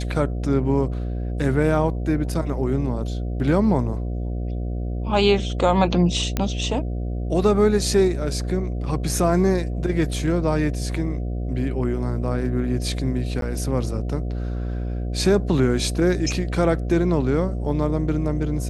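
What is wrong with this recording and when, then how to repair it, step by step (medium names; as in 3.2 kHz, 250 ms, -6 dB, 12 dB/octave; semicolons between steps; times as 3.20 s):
buzz 60 Hz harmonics 12 -26 dBFS
6.37 s: pop -8 dBFS
13.41–13.42 s: dropout 12 ms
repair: de-click; de-hum 60 Hz, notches 12; interpolate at 13.41 s, 12 ms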